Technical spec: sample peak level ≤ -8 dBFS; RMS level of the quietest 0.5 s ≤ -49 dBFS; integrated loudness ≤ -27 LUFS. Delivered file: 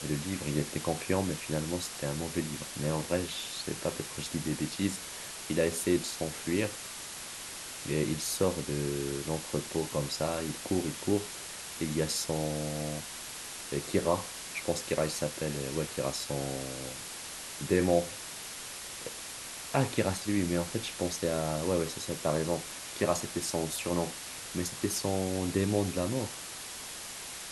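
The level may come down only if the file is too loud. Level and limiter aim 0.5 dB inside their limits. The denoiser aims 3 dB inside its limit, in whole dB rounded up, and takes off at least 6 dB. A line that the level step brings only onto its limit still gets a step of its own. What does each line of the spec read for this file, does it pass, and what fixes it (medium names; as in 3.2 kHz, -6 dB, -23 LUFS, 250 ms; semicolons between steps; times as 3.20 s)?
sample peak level -11.5 dBFS: pass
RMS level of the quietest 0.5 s -42 dBFS: fail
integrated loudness -33.0 LUFS: pass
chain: noise reduction 10 dB, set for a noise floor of -42 dBFS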